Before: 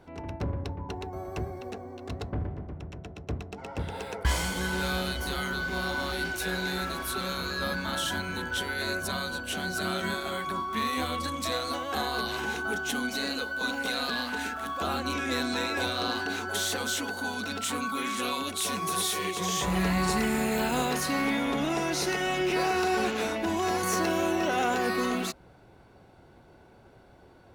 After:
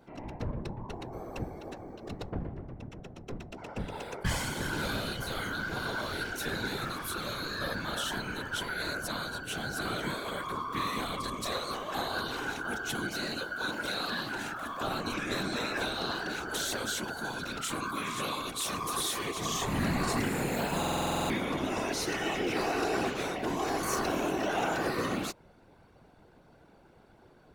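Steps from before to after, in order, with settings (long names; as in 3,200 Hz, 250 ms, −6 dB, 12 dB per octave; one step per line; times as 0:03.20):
random phases in short frames
buffer that repeats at 0:20.79, samples 2,048, times 10
level −3.5 dB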